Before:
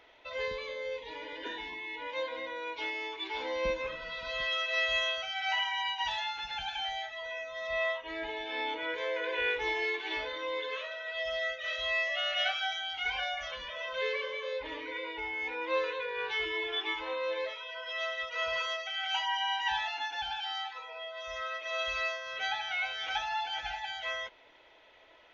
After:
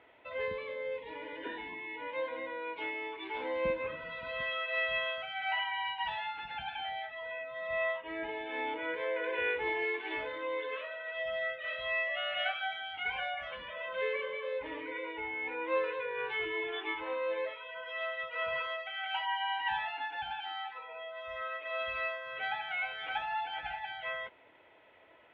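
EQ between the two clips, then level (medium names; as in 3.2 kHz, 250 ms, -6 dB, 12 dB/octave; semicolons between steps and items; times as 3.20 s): high-pass 120 Hz 12 dB/octave; low-pass 2.8 kHz 24 dB/octave; bass shelf 210 Hz +10.5 dB; -1.5 dB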